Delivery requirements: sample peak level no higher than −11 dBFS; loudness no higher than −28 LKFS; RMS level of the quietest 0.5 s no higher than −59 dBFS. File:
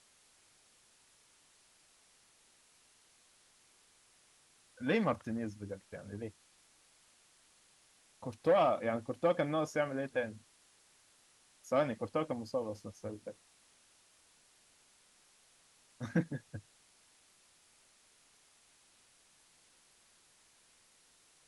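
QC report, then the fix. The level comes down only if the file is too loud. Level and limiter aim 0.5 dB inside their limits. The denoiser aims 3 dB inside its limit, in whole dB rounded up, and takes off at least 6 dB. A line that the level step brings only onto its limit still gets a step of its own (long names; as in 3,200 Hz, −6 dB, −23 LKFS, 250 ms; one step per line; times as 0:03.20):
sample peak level −19.0 dBFS: in spec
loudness −35.5 LKFS: in spec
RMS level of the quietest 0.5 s −67 dBFS: in spec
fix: no processing needed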